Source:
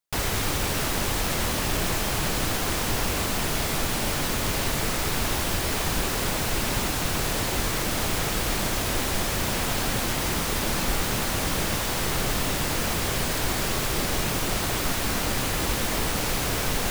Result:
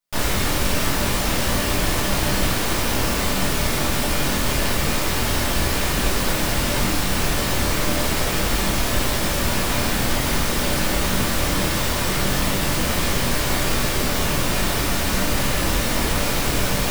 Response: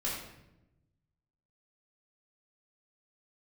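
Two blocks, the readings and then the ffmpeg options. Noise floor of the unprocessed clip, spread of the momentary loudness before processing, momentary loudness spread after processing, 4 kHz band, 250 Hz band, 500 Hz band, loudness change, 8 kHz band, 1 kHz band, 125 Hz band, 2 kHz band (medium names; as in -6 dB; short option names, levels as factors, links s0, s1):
-27 dBFS, 0 LU, 0 LU, +4.5 dB, +6.0 dB, +5.0 dB, +4.5 dB, +3.5 dB, +4.0 dB, +5.0 dB, +4.5 dB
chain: -filter_complex "[1:a]atrim=start_sample=2205,atrim=end_sample=3969[s0];[0:a][s0]afir=irnorm=-1:irlink=0,afftfilt=real='re*lt(hypot(re,im),2.24)':imag='im*lt(hypot(re,im),2.24)':win_size=1024:overlap=0.75,volume=1.12"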